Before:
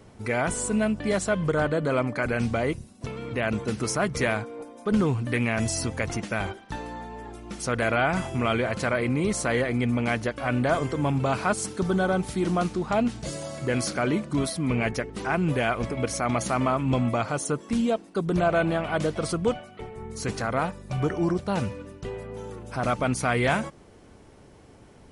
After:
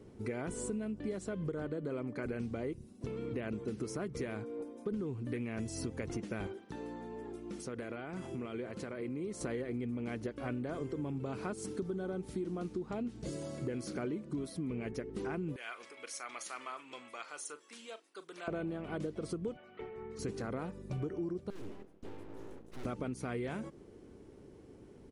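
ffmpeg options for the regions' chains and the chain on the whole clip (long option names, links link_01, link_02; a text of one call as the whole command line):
ffmpeg -i in.wav -filter_complex "[0:a]asettb=1/sr,asplit=3[link_01][link_02][link_03];[link_01]atrim=end=6.474[link_04];[link_02]atrim=start=6.47:end=9.41,asetpts=PTS-STARTPTS,afade=type=in:duration=0.004:curve=qsin,afade=type=out:start_time=2.936:duration=0.004:curve=qsin,highpass=frequency=130:poles=1,acompressor=threshold=-34dB:ratio=3:attack=3.2:release=140:knee=1:detection=peak[link_05];[link_03]atrim=start=9.406[link_06];[link_04][link_05]acrossfade=duration=0.004:curve1=hsin:curve2=qsin[link_07];[link_07][link_06]acrossfade=duration=0.004:curve1=qsin:curve2=hsin,asettb=1/sr,asplit=3[link_08][link_09][link_10];[link_08]atrim=end=15.564[link_11];[link_09]atrim=start=15.56:end=18.48,asetpts=PTS-STARTPTS,afade=type=in:duration=0.004:curve=qsin,afade=type=out:start_time=2.916:duration=0.004:curve=qsin,highpass=1400,asplit=2[link_12][link_13];[link_13]adelay=40,volume=-14dB[link_14];[link_12][link_14]amix=inputs=2:normalize=0,atrim=end_sample=128772[link_15];[link_10]atrim=start=18.476[link_16];[link_11][link_15]acrossfade=duration=0.004:curve1=hsin:curve2=qsin[link_17];[link_17][link_16]acrossfade=duration=0.004:curve1=qsin:curve2=hsin,asettb=1/sr,asplit=3[link_18][link_19][link_20];[link_18]atrim=end=19.574[link_21];[link_19]atrim=start=19.57:end=20.19,asetpts=PTS-STARTPTS,afade=type=in:duration=0.004:curve=qsin,afade=type=out:start_time=0.616:duration=0.004:curve=qsin,lowpass=2200,tiltshelf=frequency=640:gain=-10[link_22];[link_20]atrim=start=20.186[link_23];[link_21][link_22]acrossfade=duration=0.004:curve1=hsin:curve2=qsin[link_24];[link_24][link_23]acrossfade=duration=0.004:curve1=qsin:curve2=hsin,asettb=1/sr,asplit=3[link_25][link_26][link_27];[link_25]atrim=end=21.504[link_28];[link_26]atrim=start=21.5:end=22.85,asetpts=PTS-STARTPTS,afade=type=in:duration=0.004:curve=qsin,afade=type=out:start_time=1.346:duration=0.004:curve=qsin,agate=range=-10dB:threshold=-40dB:ratio=16:release=100:detection=peak,aeval=exprs='abs(val(0))':channel_layout=same,aeval=exprs='(tanh(17.8*val(0)+0.4)-tanh(0.4))/17.8':channel_layout=same[link_29];[link_27]atrim=start=22.846[link_30];[link_28][link_29]acrossfade=duration=0.004:curve1=hsin:curve2=qsin[link_31];[link_31][link_30]acrossfade=duration=0.004:curve1=qsin:curve2=hsin,firequalizer=gain_entry='entry(100,0);entry(380,8);entry(650,-5)':delay=0.05:min_phase=1,acompressor=threshold=-28dB:ratio=10,volume=-6.5dB" out.wav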